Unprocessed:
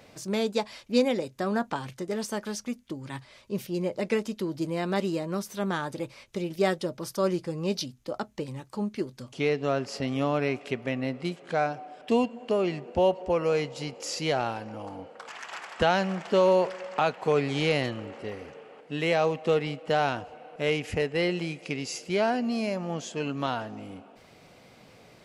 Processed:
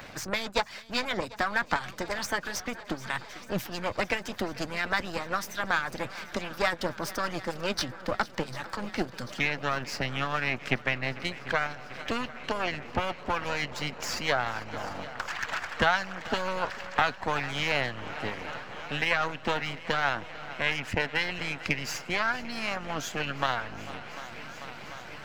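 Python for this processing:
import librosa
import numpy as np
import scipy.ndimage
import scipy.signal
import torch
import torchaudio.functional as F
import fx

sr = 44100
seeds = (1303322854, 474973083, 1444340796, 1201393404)

p1 = np.where(x < 0.0, 10.0 ** (-12.0 / 20.0) * x, x)
p2 = fx.graphic_eq_15(p1, sr, hz=(400, 1600, 10000), db=(-8, 7, -8))
p3 = fx.rider(p2, sr, range_db=3, speed_s=0.5)
p4 = p2 + F.gain(torch.from_numpy(p3), -2.0).numpy()
p5 = fx.hpss(p4, sr, part='harmonic', gain_db=-15)
p6 = p5 + fx.echo_swing(p5, sr, ms=742, ratio=1.5, feedback_pct=72, wet_db=-21.0, dry=0)
p7 = fx.band_squash(p6, sr, depth_pct=40)
y = F.gain(torch.from_numpy(p7), 2.0).numpy()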